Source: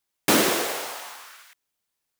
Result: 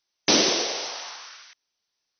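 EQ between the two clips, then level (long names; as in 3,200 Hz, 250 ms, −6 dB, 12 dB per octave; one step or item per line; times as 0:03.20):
bass and treble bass −5 dB, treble +12 dB
dynamic equaliser 1,400 Hz, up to −7 dB, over −38 dBFS, Q 1.2
linear-phase brick-wall low-pass 6,200 Hz
0.0 dB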